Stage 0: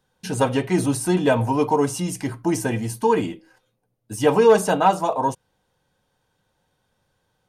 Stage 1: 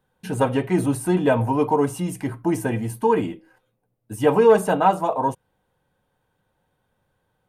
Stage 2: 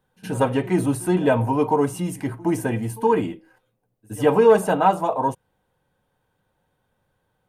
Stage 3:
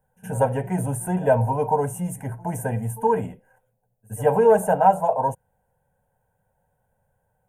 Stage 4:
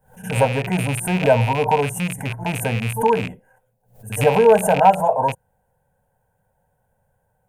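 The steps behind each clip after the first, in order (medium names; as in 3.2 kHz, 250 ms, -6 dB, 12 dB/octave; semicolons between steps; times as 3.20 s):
peaking EQ 5.5 kHz -12 dB 1.3 oct
pre-echo 69 ms -21 dB
high-order bell 3.1 kHz -12.5 dB; static phaser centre 1.2 kHz, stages 6; trim +3 dB
rattle on loud lows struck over -29 dBFS, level -20 dBFS; swell ahead of each attack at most 140 dB/s; trim +3 dB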